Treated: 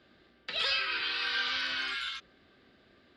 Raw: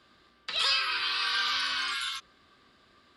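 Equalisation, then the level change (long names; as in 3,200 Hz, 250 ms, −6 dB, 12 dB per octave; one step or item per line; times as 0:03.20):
head-to-tape spacing loss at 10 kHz 23 dB
low-shelf EQ 150 Hz −5.5 dB
parametric band 1,100 Hz −13.5 dB 0.44 octaves
+5.0 dB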